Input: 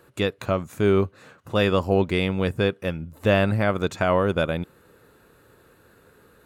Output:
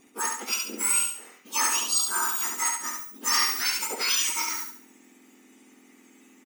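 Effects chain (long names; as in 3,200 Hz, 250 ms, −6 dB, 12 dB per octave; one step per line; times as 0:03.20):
frequency axis turned over on the octave scale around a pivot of 1,800 Hz
on a send: repeating echo 70 ms, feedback 38%, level −4 dB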